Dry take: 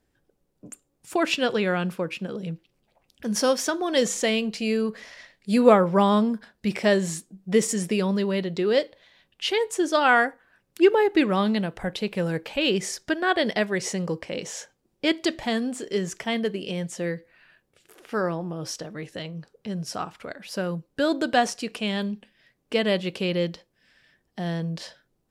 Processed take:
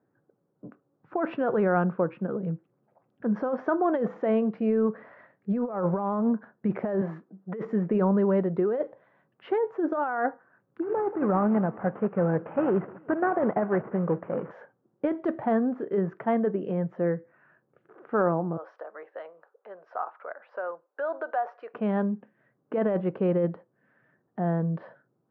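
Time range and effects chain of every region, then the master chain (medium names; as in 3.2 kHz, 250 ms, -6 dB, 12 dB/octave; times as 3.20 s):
7.01–7.65 s: high-pass 490 Hz 6 dB/octave + treble shelf 4.6 kHz -5.5 dB + compressor with a negative ratio -31 dBFS
10.82–14.51 s: CVSD coder 16 kbps + feedback delay 186 ms, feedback 55%, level -23.5 dB
18.57–21.74 s: high-pass 550 Hz 24 dB/octave + compression 4:1, threshold -29 dBFS
whole clip: elliptic band-pass 120–1400 Hz, stop band 70 dB; dynamic bell 760 Hz, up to +5 dB, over -39 dBFS, Q 2.2; compressor with a negative ratio -24 dBFS, ratio -1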